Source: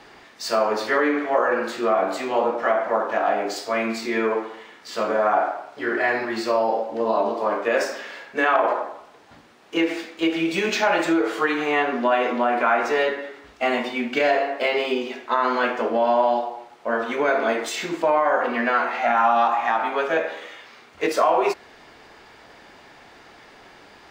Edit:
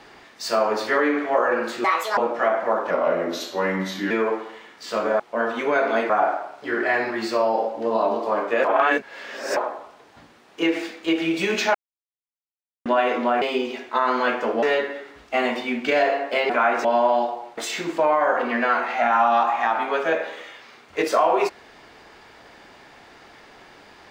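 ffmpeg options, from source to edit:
-filter_complex "[0:a]asplit=16[s0][s1][s2][s3][s4][s5][s6][s7][s8][s9][s10][s11][s12][s13][s14][s15];[s0]atrim=end=1.844[s16];[s1]atrim=start=1.84:end=2.41,asetpts=PTS-STARTPTS,asetrate=75411,aresample=44100[s17];[s2]atrim=start=2.406:end=3.144[s18];[s3]atrim=start=3.14:end=4.15,asetpts=PTS-STARTPTS,asetrate=37044,aresample=44100[s19];[s4]atrim=start=4.146:end=5.242[s20];[s5]atrim=start=16.718:end=17.622[s21];[s6]atrim=start=5.238:end=7.792[s22];[s7]atrim=start=7.788:end=8.712,asetpts=PTS-STARTPTS,areverse[s23];[s8]atrim=start=8.708:end=10.89,asetpts=PTS-STARTPTS,afade=t=out:st=2.178:d=0.004:c=hsin[s24];[s9]atrim=start=10.89:end=12,asetpts=PTS-STARTPTS,volume=0[s25];[s10]atrim=start=12:end=12.562,asetpts=PTS-STARTPTS,afade=t=in:d=0.004:c=hsin[s26];[s11]atrim=start=14.778:end=15.992[s27];[s12]atrim=start=12.908:end=14.782[s28];[s13]atrim=start=12.558:end=12.912[s29];[s14]atrim=start=15.988:end=16.722[s30];[s15]atrim=start=17.618[s31];[s16][s17]acrossfade=d=0.004:c1=hsin:c2=hsin[s32];[s32][s18]acrossfade=d=0.004:c1=hsin:c2=hsin[s33];[s33][s19]acrossfade=d=0.004:c1=hsin:c2=hsin[s34];[s34][s20]acrossfade=d=0.004:c1=hsin:c2=hsin[s35];[s35][s21]acrossfade=d=0.004:c1=hsin:c2=hsin[s36];[s36][s22]acrossfade=d=0.004:c1=hsin:c2=hsin[s37];[s37][s23]acrossfade=d=0.004:c1=hsin:c2=hsin[s38];[s24][s25][s26]concat=n=3:v=0:a=1[s39];[s38][s39]acrossfade=d=0.004:c1=hsin:c2=hsin[s40];[s40][s27]acrossfade=d=0.004:c1=hsin:c2=hsin[s41];[s41][s28]acrossfade=d=0.004:c1=hsin:c2=hsin[s42];[s42][s29]acrossfade=d=0.004:c1=hsin:c2=hsin[s43];[s43][s30]acrossfade=d=0.004:c1=hsin:c2=hsin[s44];[s44][s31]acrossfade=d=0.004:c1=hsin:c2=hsin"

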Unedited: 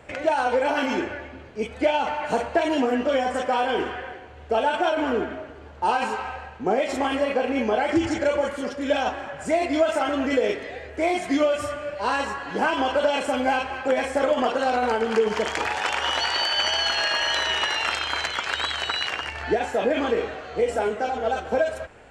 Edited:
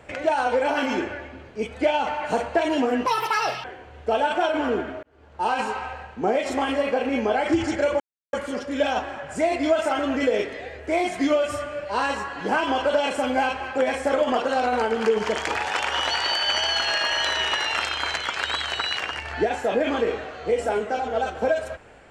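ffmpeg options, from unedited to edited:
-filter_complex "[0:a]asplit=5[s0][s1][s2][s3][s4];[s0]atrim=end=3.064[s5];[s1]atrim=start=3.06:end=4.07,asetpts=PTS-STARTPTS,asetrate=76734,aresample=44100,atrim=end_sample=25598,asetpts=PTS-STARTPTS[s6];[s2]atrim=start=4.066:end=5.46,asetpts=PTS-STARTPTS,afade=t=out:st=1.39:d=0.004:c=hsin[s7];[s3]atrim=start=5.46:end=8.43,asetpts=PTS-STARTPTS,afade=t=in:d=0.54,afade=t=out:st=2.966:d=0.004:c=hsin,apad=pad_dur=0.33[s8];[s4]atrim=start=8.43,asetpts=PTS-STARTPTS,afade=t=in:d=0.004:c=hsin[s9];[s5][s6]acrossfade=d=0.004:c1=hsin:c2=hsin[s10];[s7][s8][s9]concat=n=3:v=0:a=1[s11];[s10][s11]acrossfade=d=0.004:c1=hsin:c2=hsin"

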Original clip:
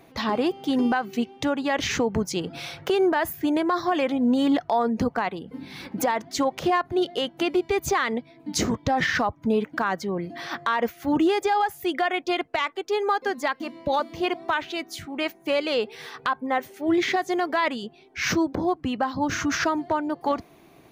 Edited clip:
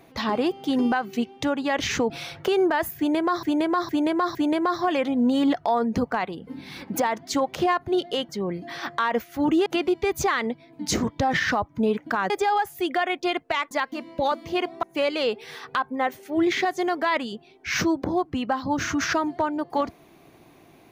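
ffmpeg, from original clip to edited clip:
-filter_complex "[0:a]asplit=10[s0][s1][s2][s3][s4][s5][s6][s7][s8][s9];[s0]atrim=end=2.102[s10];[s1]atrim=start=2.518:end=3.852[s11];[s2]atrim=start=3.388:end=3.852[s12];[s3]atrim=start=3.388:end=3.852[s13];[s4]atrim=start=3.388:end=7.332[s14];[s5]atrim=start=9.968:end=11.342[s15];[s6]atrim=start=7.328:end=9.972[s16];[s7]atrim=start=11.338:end=12.752[s17];[s8]atrim=start=13.388:end=14.512[s18];[s9]atrim=start=15.338[s19];[s10][s11]acrossfade=d=0.004:c1=hsin:c2=hsin[s20];[s20][s12]acrossfade=d=0.004:c1=hsin:c2=hsin[s21];[s21][s13]acrossfade=d=0.004:c1=hsin:c2=hsin[s22];[s22][s14]acrossfade=d=0.004:c1=hsin:c2=hsin[s23];[s23][s15]acrossfade=d=0.004:c1=hsin:c2=hsin[s24];[s24][s16]acrossfade=d=0.004:c1=hsin:c2=hsin[s25];[s25][s17]acrossfade=d=0.004:c1=hsin:c2=hsin[s26];[s26][s18]acrossfade=d=0.004:c1=hsin:c2=hsin[s27];[s27][s19]acrossfade=d=0.004:c1=hsin:c2=hsin"

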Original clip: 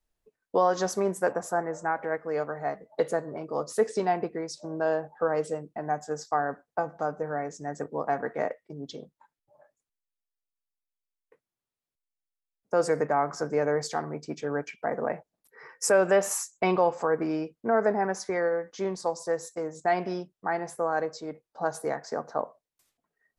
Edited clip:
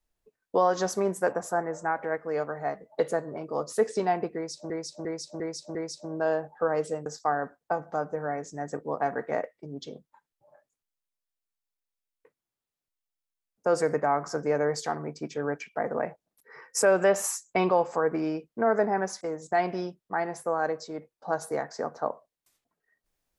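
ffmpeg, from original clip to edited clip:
-filter_complex "[0:a]asplit=7[s0][s1][s2][s3][s4][s5][s6];[s0]atrim=end=4.702[s7];[s1]atrim=start=4.348:end=4.702[s8];[s2]atrim=start=4.348:end=4.702[s9];[s3]atrim=start=4.348:end=4.702[s10];[s4]atrim=start=4.348:end=5.662[s11];[s5]atrim=start=6.128:end=18.282[s12];[s6]atrim=start=19.538[s13];[s7][s8]acrossfade=d=0.004:c1=hsin:c2=hsin[s14];[s14][s9]acrossfade=d=0.004:c1=hsin:c2=hsin[s15];[s15][s10]acrossfade=d=0.004:c1=hsin:c2=hsin[s16];[s16][s11]acrossfade=d=0.004:c1=hsin:c2=hsin[s17];[s17][s12]acrossfade=d=0.004:c1=hsin:c2=hsin[s18];[s18][s13]acrossfade=d=0.004:c1=hsin:c2=hsin"

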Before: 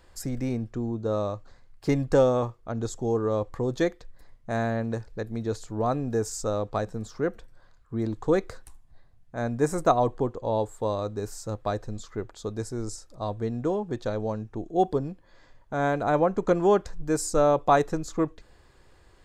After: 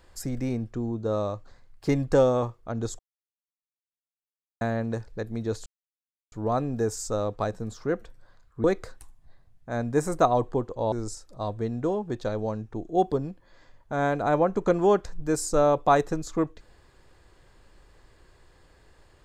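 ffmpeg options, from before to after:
-filter_complex "[0:a]asplit=6[s0][s1][s2][s3][s4][s5];[s0]atrim=end=2.99,asetpts=PTS-STARTPTS,afade=t=out:st=2.986:d=0.004:c=hsin[s6];[s1]atrim=start=2.99:end=4.61,asetpts=PTS-STARTPTS,volume=0[s7];[s2]atrim=start=4.61:end=5.66,asetpts=PTS-STARTPTS,afade=t=in:d=0.004:c=hsin,afade=t=out:st=1.046:d=0.004:c=hsin,apad=pad_dur=0.66[s8];[s3]atrim=start=5.66:end=7.982,asetpts=PTS-STARTPTS,afade=t=in:d=0.004:c=hsin[s9];[s4]atrim=start=8.298:end=10.582[s10];[s5]atrim=start=12.728[s11];[s6][s7][s8][s9]concat=n=4:v=0:a=1[s12];[s12][s10]acrossfade=d=0.004:c1=hsin:c2=hsin[s13];[s13][s11]acrossfade=d=0.004:c1=hsin:c2=hsin"

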